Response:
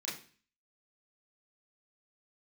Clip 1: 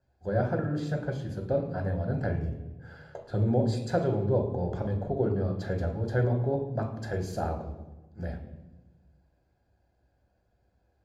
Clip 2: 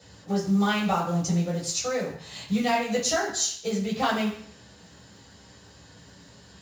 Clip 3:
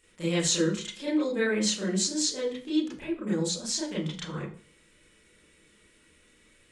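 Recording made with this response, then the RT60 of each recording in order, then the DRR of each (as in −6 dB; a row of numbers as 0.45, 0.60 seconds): 3; 1.2, 0.60, 0.40 seconds; 2.5, −6.5, −8.0 decibels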